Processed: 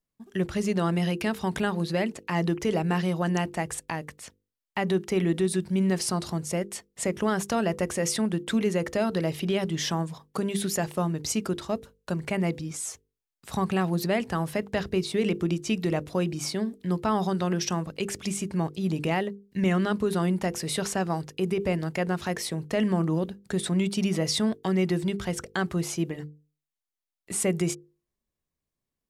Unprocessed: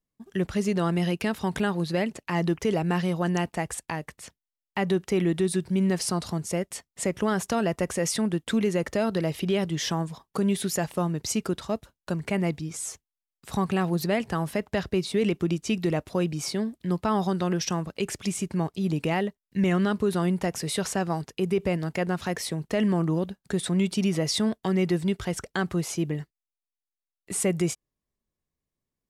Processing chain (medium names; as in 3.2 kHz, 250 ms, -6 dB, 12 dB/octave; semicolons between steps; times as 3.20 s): hum notches 50/100/150/200/250/300/350/400/450/500 Hz